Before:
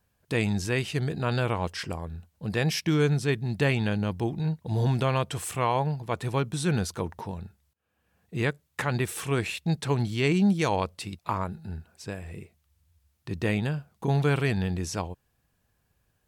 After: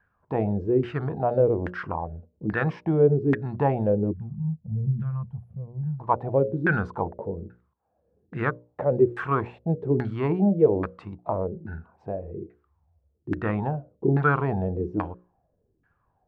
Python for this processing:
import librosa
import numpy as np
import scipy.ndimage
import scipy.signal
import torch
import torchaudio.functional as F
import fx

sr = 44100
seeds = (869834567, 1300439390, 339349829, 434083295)

y = fx.filter_lfo_lowpass(x, sr, shape='saw_down', hz=1.2, low_hz=300.0, high_hz=1700.0, q=6.4)
y = fx.hum_notches(y, sr, base_hz=60, count=10)
y = fx.spec_box(y, sr, start_s=4.13, length_s=1.87, low_hz=230.0, high_hz=9700.0, gain_db=-28)